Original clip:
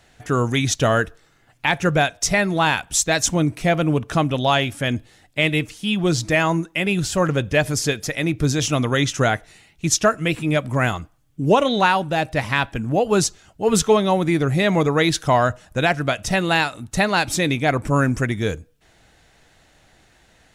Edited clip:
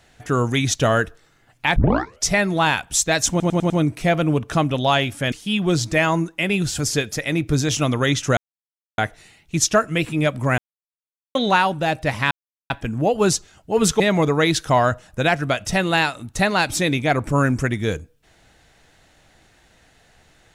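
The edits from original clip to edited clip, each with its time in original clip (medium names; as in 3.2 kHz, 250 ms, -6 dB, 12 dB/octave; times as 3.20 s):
1.76 s: tape start 0.50 s
3.30 s: stutter 0.10 s, 5 plays
4.92–5.69 s: delete
7.16–7.70 s: delete
9.28 s: insert silence 0.61 s
10.88–11.65 s: mute
12.61 s: insert silence 0.39 s
13.91–14.58 s: delete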